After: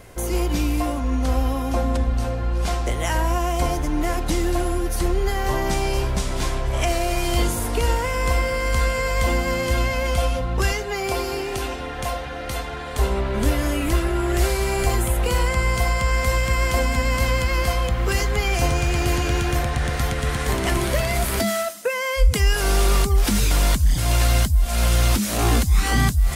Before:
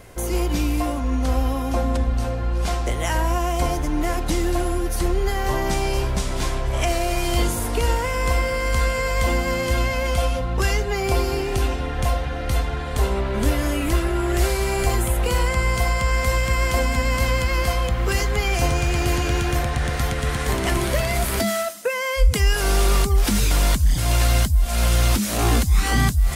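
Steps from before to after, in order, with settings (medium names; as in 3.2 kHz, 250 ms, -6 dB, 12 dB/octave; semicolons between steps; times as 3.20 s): 10.72–12.99 s: bass shelf 190 Hz -11 dB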